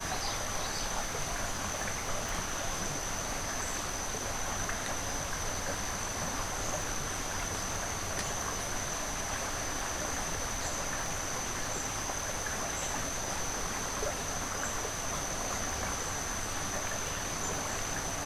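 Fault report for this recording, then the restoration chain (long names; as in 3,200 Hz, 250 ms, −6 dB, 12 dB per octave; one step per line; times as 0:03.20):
surface crackle 27 per second −40 dBFS
0:02.29: click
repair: click removal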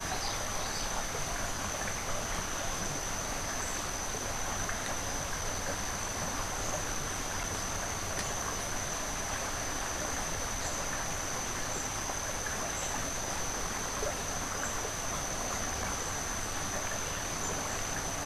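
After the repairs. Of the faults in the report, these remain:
0:02.29: click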